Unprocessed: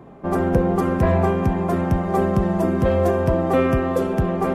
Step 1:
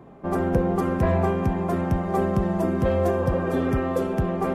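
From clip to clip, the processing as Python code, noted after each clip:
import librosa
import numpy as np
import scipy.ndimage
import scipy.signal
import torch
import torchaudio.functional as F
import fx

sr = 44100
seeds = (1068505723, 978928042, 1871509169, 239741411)

y = fx.spec_repair(x, sr, seeds[0], start_s=3.23, length_s=0.53, low_hz=290.0, high_hz=3100.0, source='both')
y = y * librosa.db_to_amplitude(-3.5)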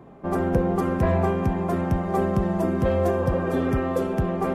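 y = x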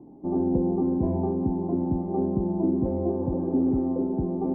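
y = fx.formant_cascade(x, sr, vowel='u')
y = y * librosa.db_to_amplitude(7.5)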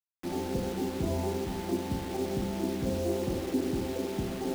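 y = fx.volume_shaper(x, sr, bpm=83, per_beat=1, depth_db=-16, release_ms=62.0, shape='fast start')
y = fx.rev_schroeder(y, sr, rt60_s=0.54, comb_ms=32, drr_db=1.5)
y = fx.quant_dither(y, sr, seeds[1], bits=6, dither='none')
y = y * librosa.db_to_amplitude(-5.5)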